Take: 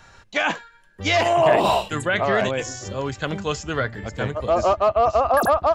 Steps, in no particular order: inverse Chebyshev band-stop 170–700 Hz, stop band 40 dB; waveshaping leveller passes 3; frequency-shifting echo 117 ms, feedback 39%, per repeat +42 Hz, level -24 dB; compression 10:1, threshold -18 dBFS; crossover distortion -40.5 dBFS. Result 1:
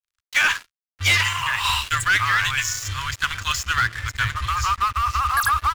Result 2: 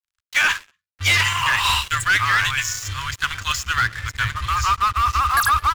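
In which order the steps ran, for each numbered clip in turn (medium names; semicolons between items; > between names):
frequency-shifting echo > crossover distortion > compression > inverse Chebyshev band-stop > waveshaping leveller; crossover distortion > inverse Chebyshev band-stop > compression > frequency-shifting echo > waveshaping leveller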